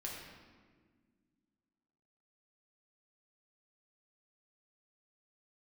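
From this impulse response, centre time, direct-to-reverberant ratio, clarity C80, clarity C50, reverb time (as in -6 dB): 74 ms, -3.5 dB, 3.0 dB, 1.0 dB, 1.6 s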